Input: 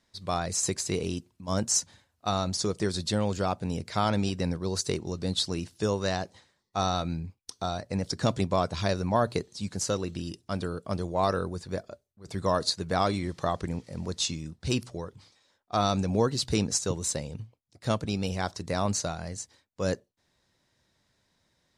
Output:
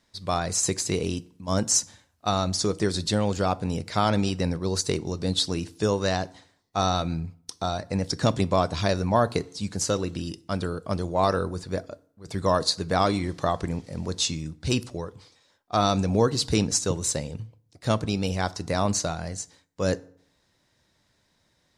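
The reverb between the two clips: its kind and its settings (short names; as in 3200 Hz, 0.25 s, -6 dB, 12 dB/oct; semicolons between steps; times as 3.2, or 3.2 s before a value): FDN reverb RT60 0.6 s, low-frequency decay 1.1×, high-frequency decay 0.7×, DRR 17 dB; gain +3.5 dB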